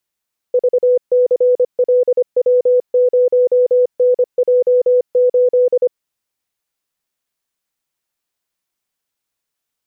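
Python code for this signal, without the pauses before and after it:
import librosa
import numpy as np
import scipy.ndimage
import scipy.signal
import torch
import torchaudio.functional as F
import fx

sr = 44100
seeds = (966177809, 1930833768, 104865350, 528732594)

y = fx.morse(sr, text='VCLW0NJ8', wpm=25, hz=497.0, level_db=-8.5)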